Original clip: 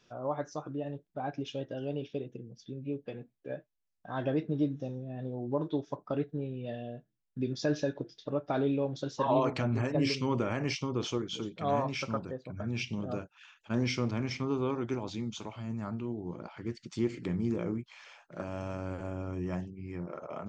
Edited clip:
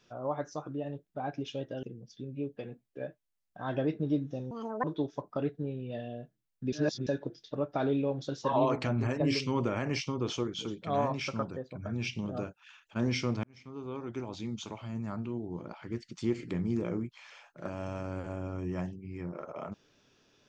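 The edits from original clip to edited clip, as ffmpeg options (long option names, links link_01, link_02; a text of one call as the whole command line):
ffmpeg -i in.wav -filter_complex "[0:a]asplit=7[link_01][link_02][link_03][link_04][link_05][link_06][link_07];[link_01]atrim=end=1.832[link_08];[link_02]atrim=start=2.318:end=5.004[link_09];[link_03]atrim=start=5:end=5.58,asetpts=PTS-STARTPTS,asetrate=78498,aresample=44100[link_10];[link_04]atrim=start=5.576:end=7.472[link_11];[link_05]atrim=start=7.468:end=7.812,asetpts=PTS-STARTPTS,areverse[link_12];[link_06]atrim=start=7.808:end=14.18,asetpts=PTS-STARTPTS,afade=type=out:start_time=6.368:duration=0.004:curve=hsin[link_13];[link_07]atrim=start=14.18,asetpts=PTS-STARTPTS,afade=type=in:duration=1.18[link_14];[link_08][link_09]acrossfade=duration=0.004:curve1=hsin:curve2=hsin[link_15];[link_15][link_10]acrossfade=duration=0.004:curve1=hsin:curve2=hsin[link_16];[link_16][link_11]acrossfade=duration=0.004:curve1=hsin:curve2=hsin[link_17];[link_17][link_12]acrossfade=duration=0.004:curve1=hsin:curve2=hsin[link_18];[link_13][link_14]concat=n=2:v=0:a=1[link_19];[link_18][link_19]acrossfade=duration=0.004:curve1=hsin:curve2=hsin" out.wav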